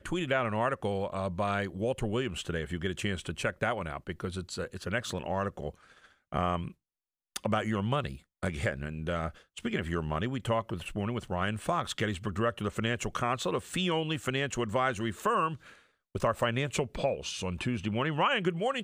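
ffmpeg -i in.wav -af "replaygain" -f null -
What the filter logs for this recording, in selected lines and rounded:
track_gain = +12.4 dB
track_peak = 0.154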